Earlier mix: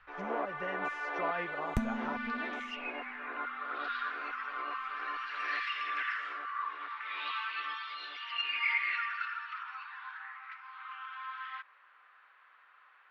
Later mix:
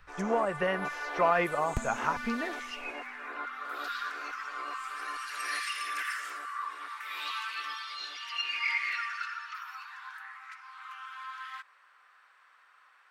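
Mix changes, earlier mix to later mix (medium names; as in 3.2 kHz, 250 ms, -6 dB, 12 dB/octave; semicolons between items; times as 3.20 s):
speech +11.0 dB; first sound: remove low-pass 3.4 kHz 24 dB/octave; second sound: add peaking EQ 220 Hz -11.5 dB 0.29 oct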